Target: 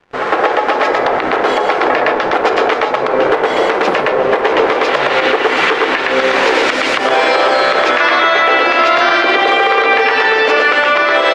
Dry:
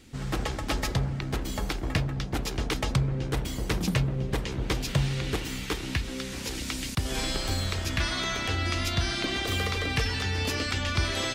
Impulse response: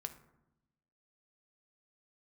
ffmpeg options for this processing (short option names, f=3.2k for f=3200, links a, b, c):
-filter_complex "[0:a]highpass=f=450:w=0.5412,highpass=f=450:w=1.3066,acrusher=bits=7:mix=0:aa=0.5,aecho=1:1:114:0.708,asplit=2[a][b];[1:a]atrim=start_sample=2205[c];[b][c]afir=irnorm=-1:irlink=0,volume=5.5dB[d];[a][d]amix=inputs=2:normalize=0,dynaudnorm=f=240:g=11:m=11.5dB,lowpass=1.6k,acompressor=threshold=-28dB:ratio=6,alimiter=level_in=23dB:limit=-1dB:release=50:level=0:latency=1,volume=-1dB"